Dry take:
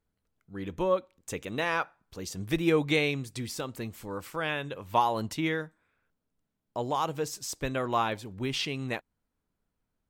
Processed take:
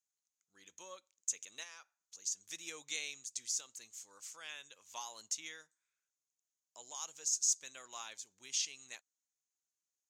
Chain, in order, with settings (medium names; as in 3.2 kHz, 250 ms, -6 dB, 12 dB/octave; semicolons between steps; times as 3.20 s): 1.63–2.45 s: compression 2:1, threshold -39 dBFS, peak gain reduction 8.5 dB; band-pass filter 6.6 kHz, Q 7.5; trim +12 dB